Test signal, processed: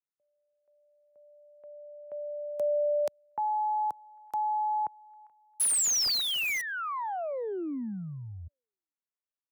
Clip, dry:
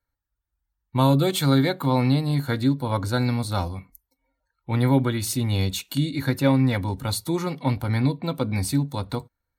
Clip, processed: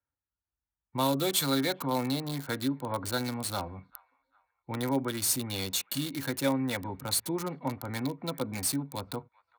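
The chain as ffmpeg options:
ffmpeg -i in.wav -filter_complex "[0:a]highpass=84,highshelf=frequency=3900:gain=9.5,acrossover=split=220|980|2000[link_01][link_02][link_03][link_04];[link_01]acompressor=threshold=-34dB:ratio=6[link_05];[link_03]aecho=1:1:400|800|1200:0.133|0.0493|0.0183[link_06];[link_04]acrusher=bits=4:mix=0:aa=0.000001[link_07];[link_05][link_02][link_06][link_07]amix=inputs=4:normalize=0,volume=-6.5dB" out.wav

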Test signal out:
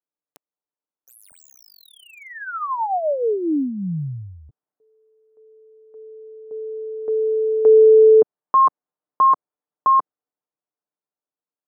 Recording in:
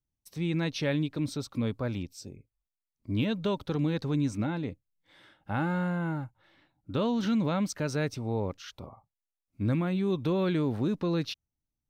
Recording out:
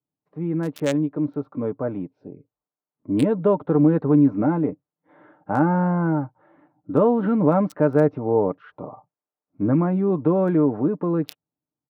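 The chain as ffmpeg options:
ffmpeg -i in.wav -filter_complex "[0:a]highpass=220,aecho=1:1:6.7:0.42,acrossover=split=1300[link_01][link_02];[link_01]dynaudnorm=framelen=680:gausssize=7:maxgain=6dB[link_03];[link_02]acrusher=bits=3:mix=0:aa=0.5[link_04];[link_03][link_04]amix=inputs=2:normalize=0,adynamicequalizer=threshold=0.00794:dfrequency=2800:dqfactor=0.7:tfrequency=2800:tqfactor=0.7:attack=5:release=100:ratio=0.375:range=2:mode=boostabove:tftype=highshelf,volume=6.5dB" out.wav

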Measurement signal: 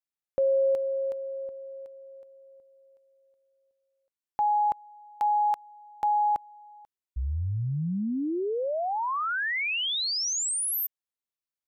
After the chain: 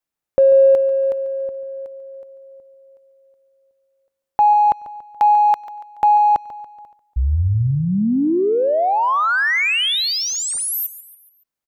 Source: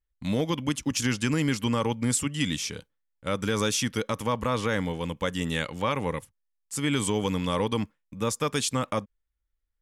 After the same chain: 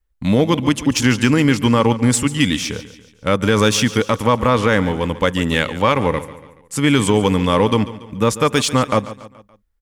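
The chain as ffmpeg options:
ffmpeg -i in.wav -filter_complex "[0:a]adynamicequalizer=threshold=0.00447:dfrequency=160:dqfactor=3.7:tfrequency=160:tqfactor=3.7:attack=5:release=100:ratio=0.375:range=2:mode=cutabove:tftype=bell,asplit=2[link_01][link_02];[link_02]adynamicsmooth=sensitivity=4:basefreq=2300,volume=-1dB[link_03];[link_01][link_03]amix=inputs=2:normalize=0,aecho=1:1:142|284|426|568:0.168|0.0789|0.0371|0.0174,volume=6.5dB" out.wav

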